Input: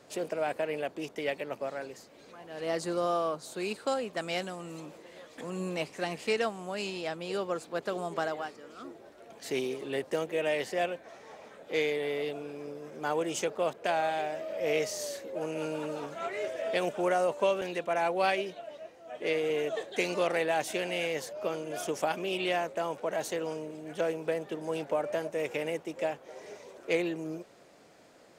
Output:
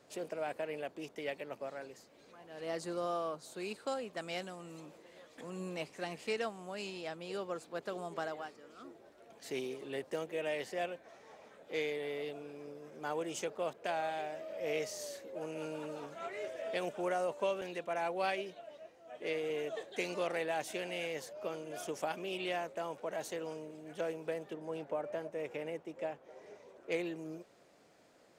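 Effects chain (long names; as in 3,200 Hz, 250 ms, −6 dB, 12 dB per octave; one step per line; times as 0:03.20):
0:24.53–0:26.92: high-shelf EQ 3,000 Hz −9 dB
level −7 dB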